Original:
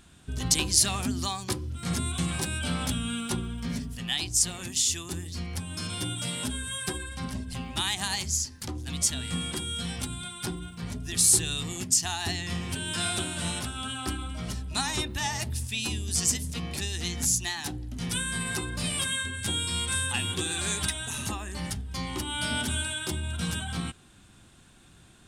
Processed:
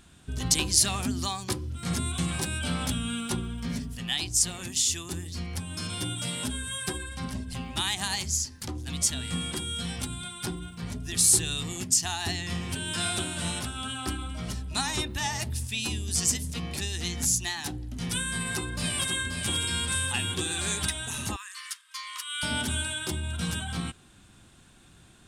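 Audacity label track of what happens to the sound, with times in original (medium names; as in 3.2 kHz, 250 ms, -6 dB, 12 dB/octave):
18.290000	19.350000	echo throw 530 ms, feedback 45%, level -6.5 dB
21.360000	22.430000	brick-wall FIR high-pass 960 Hz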